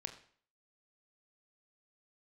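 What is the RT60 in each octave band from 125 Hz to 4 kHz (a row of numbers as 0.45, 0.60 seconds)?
0.50, 0.50, 0.50, 0.50, 0.50, 0.45 seconds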